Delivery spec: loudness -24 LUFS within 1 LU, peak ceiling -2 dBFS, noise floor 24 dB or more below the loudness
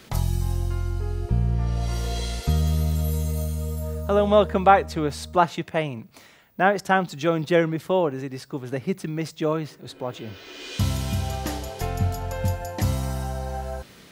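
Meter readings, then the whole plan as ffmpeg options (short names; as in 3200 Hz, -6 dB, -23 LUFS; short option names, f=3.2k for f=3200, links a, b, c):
loudness -25.0 LUFS; peak -2.0 dBFS; loudness target -24.0 LUFS
-> -af "volume=1dB,alimiter=limit=-2dB:level=0:latency=1"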